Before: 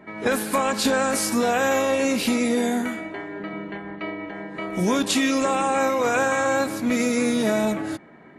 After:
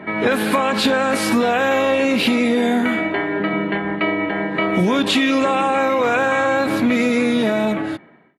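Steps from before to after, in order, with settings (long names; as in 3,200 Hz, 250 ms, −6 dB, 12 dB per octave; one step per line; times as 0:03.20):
fade-out on the ending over 1.18 s
high-pass filter 69 Hz
in parallel at +2 dB: brickwall limiter −20 dBFS, peak gain reduction 11 dB
on the sum: high shelf with overshoot 4,600 Hz −9.5 dB, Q 1.5
downward compressor 4 to 1, threshold −19 dBFS, peak gain reduction 5.5 dB
level +5 dB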